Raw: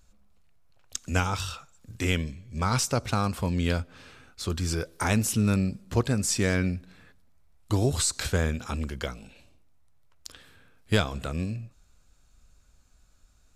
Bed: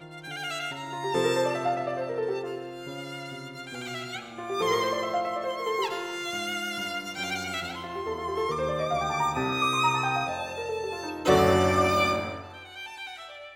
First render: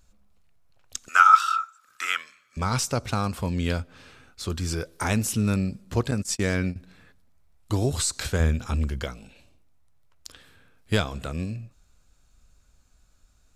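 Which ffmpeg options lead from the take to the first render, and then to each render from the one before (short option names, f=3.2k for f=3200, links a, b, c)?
-filter_complex "[0:a]asettb=1/sr,asplit=3[a][b][c];[a]atrim=end=1.084[d];[b]atrim=start=1.08:end=2.57,asetpts=PTS-STARTPTS,afade=t=in:d=0.004:c=qsin,afade=t=out:st=1.486:d=0.004:c=qsin,highpass=f=1.3k:t=q:w=15[e];[c]atrim=start=2.566[f];[d][e]acrossfade=d=0.004:c1=hsin:c2=qsin[g];[g][f]acrossfade=d=0.004:c1=qsin:c2=hsin,asettb=1/sr,asplit=3[h][i][j];[h]atrim=end=6.114[k];[i]atrim=start=6.11:end=6.76,asetpts=PTS-STARTPTS,afade=t=in:d=0.004:c=qsin,afade=t=out:st=0.646:d=0.004:c=qsin,agate=range=-31dB:threshold=-28dB:ratio=16:release=100:detection=peak[l];[j]atrim=start=6.756[m];[k][l]acrossfade=d=0.004:c1=hsin:c2=qsin[n];[n][m]acrossfade=d=0.004:c1=qsin:c2=hsin,asettb=1/sr,asplit=3[o][p][q];[o]atrim=end=8.404[r];[p]atrim=start=8.4:end=9.04,asetpts=PTS-STARTPTS,afade=t=in:d=0.004:c=qsin,afade=t=out:st=0.636:d=0.004:c=qsin,lowshelf=f=120:g=10.5[s];[q]atrim=start=9.036[t];[r][s]acrossfade=d=0.004:c1=hsin:c2=qsin[u];[u][t]acrossfade=d=0.004:c1=qsin:c2=hsin"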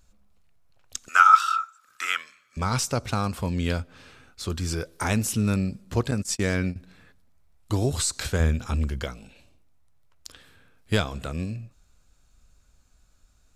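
-af anull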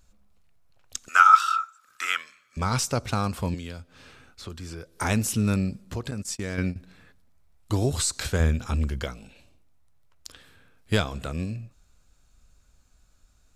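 -filter_complex "[0:a]asettb=1/sr,asplit=3[a][b][c];[a]atrim=end=3.544[d];[b]atrim=start=3.54:end=4.97,asetpts=PTS-STARTPTS,afade=t=in:d=0.004:c=qsin,afade=t=out:st=1.426:d=0.004:c=qsin,acrossover=split=240|3300[e][f][g];[e]acompressor=threshold=-40dB:ratio=4[h];[f]acompressor=threshold=-42dB:ratio=4[i];[g]acompressor=threshold=-49dB:ratio=4[j];[h][i][j]amix=inputs=3:normalize=0[k];[c]atrim=start=4.966[l];[d][k]acrossfade=d=0.004:c1=hsin:c2=qsin[m];[m][l]acrossfade=d=0.004:c1=qsin:c2=hsin,asettb=1/sr,asplit=3[n][o][p];[n]atrim=end=5.804[q];[o]atrim=start=5.8:end=6.58,asetpts=PTS-STARTPTS,afade=t=in:d=0.004:c=qsin,afade=t=out:st=0.776:d=0.004:c=qsin,acompressor=threshold=-29dB:ratio=3:attack=3.2:release=140:knee=1:detection=peak[r];[p]atrim=start=6.576[s];[q][r]acrossfade=d=0.004:c1=hsin:c2=qsin[t];[t][s]acrossfade=d=0.004:c1=qsin:c2=hsin"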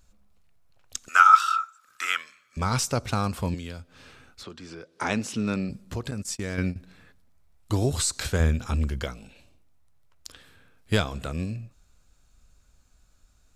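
-filter_complex "[0:a]asettb=1/sr,asplit=3[a][b][c];[a]atrim=end=4.434[d];[b]atrim=start=4.43:end=5.7,asetpts=PTS-STARTPTS,afade=t=in:d=0.004:c=qsin,afade=t=out:st=1.266:d=0.004:c=qsin,highpass=190,lowpass=5.2k[e];[c]atrim=start=5.696[f];[d][e]acrossfade=d=0.004:c1=hsin:c2=qsin[g];[g][f]acrossfade=d=0.004:c1=qsin:c2=hsin"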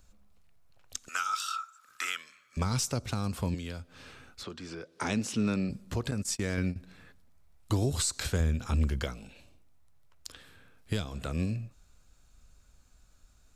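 -filter_complex "[0:a]acrossover=split=420|3000[a][b][c];[b]acompressor=threshold=-33dB:ratio=6[d];[a][d][c]amix=inputs=3:normalize=0,alimiter=limit=-18.5dB:level=0:latency=1:release=490"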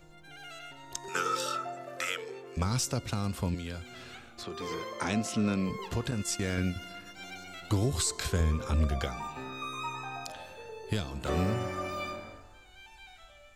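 -filter_complex "[1:a]volume=-13dB[a];[0:a][a]amix=inputs=2:normalize=0"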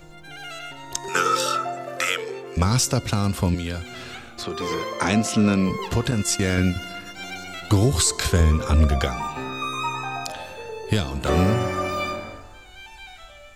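-af "volume=10dB"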